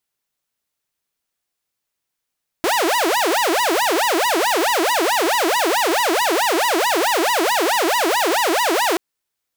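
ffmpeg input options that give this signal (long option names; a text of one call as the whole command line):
ffmpeg -f lavfi -i "aevalsrc='0.224*(2*mod((653.5*t-334.5/(2*PI*4.6)*sin(2*PI*4.6*t)),1)-1)':duration=6.33:sample_rate=44100" out.wav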